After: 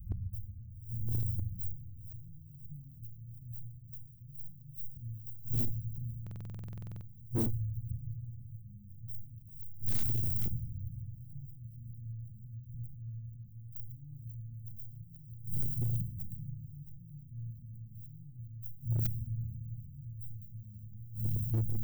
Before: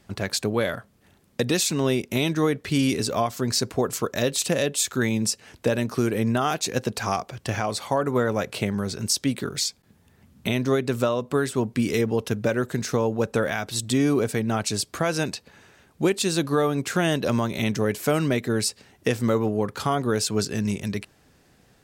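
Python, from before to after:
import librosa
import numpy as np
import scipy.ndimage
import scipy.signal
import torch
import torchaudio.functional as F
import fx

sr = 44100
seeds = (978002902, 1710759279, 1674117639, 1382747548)

p1 = fx.tracing_dist(x, sr, depth_ms=0.045)
p2 = fx.doubler(p1, sr, ms=34.0, db=-13.5)
p3 = fx.echo_diffused(p2, sr, ms=462, feedback_pct=78, wet_db=-14)
p4 = fx.gate_flip(p3, sr, shuts_db=-20.0, range_db=-34)
p5 = fx.level_steps(p4, sr, step_db=16)
p6 = p4 + (p5 * 10.0 ** (0.0 / 20.0))
p7 = fx.transient(p6, sr, attack_db=-10, sustain_db=5)
p8 = scipy.signal.sosfilt(scipy.signal.cheby2(4, 70, [460.0, 9400.0], 'bandstop', fs=sr, output='sos'), p7)
p9 = fx.room_shoebox(p8, sr, seeds[0], volume_m3=1400.0, walls='mixed', distance_m=0.89)
p10 = fx.rider(p9, sr, range_db=4, speed_s=0.5)
p11 = 10.0 ** (-39.5 / 20.0) * (np.abs((p10 / 10.0 ** (-39.5 / 20.0) + 3.0) % 4.0 - 2.0) - 1.0)
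p12 = fx.high_shelf(p11, sr, hz=6000.0, db=10.5)
p13 = fx.buffer_glitch(p12, sr, at_s=(6.22,), block=2048, repeats=16)
y = p13 * 10.0 ** (14.5 / 20.0)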